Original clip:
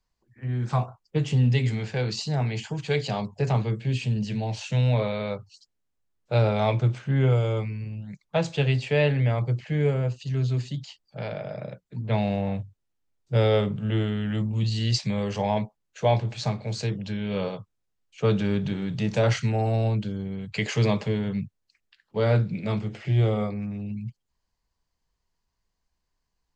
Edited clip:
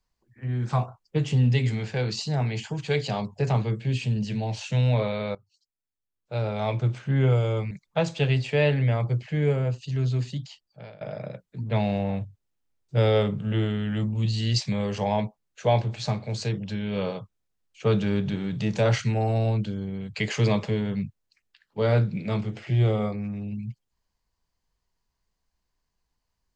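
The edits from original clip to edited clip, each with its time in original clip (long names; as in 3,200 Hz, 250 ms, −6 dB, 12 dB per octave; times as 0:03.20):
0:05.35–0:07.07: fade in quadratic, from −17 dB
0:07.71–0:08.09: remove
0:10.74–0:11.39: fade out, to −20 dB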